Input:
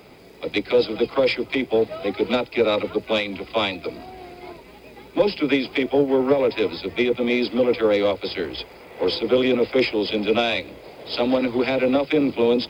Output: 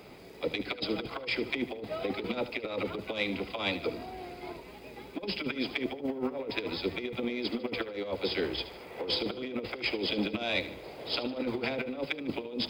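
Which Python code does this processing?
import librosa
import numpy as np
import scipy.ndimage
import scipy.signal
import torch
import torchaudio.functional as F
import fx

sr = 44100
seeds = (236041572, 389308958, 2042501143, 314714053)

p1 = fx.over_compress(x, sr, threshold_db=-24.0, ratio=-0.5)
p2 = p1 + fx.echo_feedback(p1, sr, ms=75, feedback_pct=43, wet_db=-14, dry=0)
y = p2 * librosa.db_to_amplitude(-8.0)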